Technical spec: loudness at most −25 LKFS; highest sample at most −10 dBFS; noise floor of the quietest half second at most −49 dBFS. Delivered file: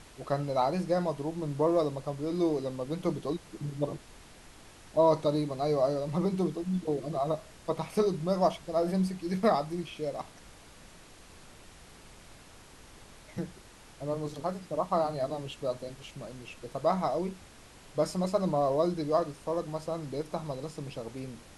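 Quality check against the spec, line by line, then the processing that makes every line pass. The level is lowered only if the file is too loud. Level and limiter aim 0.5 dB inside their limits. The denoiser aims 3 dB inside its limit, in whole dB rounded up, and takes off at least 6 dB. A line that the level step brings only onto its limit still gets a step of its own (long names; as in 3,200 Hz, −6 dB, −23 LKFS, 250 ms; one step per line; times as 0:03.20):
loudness −31.5 LKFS: in spec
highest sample −13.0 dBFS: in spec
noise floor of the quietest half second −53 dBFS: in spec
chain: no processing needed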